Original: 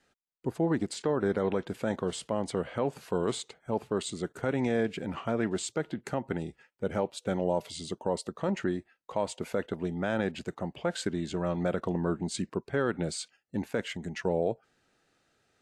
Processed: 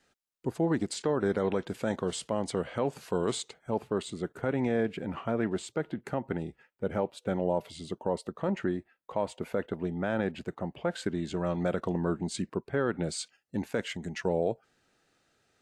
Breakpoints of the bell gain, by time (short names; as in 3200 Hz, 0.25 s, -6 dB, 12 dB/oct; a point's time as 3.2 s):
bell 6600 Hz 1.8 oct
3.57 s +2.5 dB
4.15 s -8.5 dB
10.86 s -8.5 dB
11.49 s +0.5 dB
12.2 s +0.5 dB
12.83 s -9.5 dB
13.2 s +1.5 dB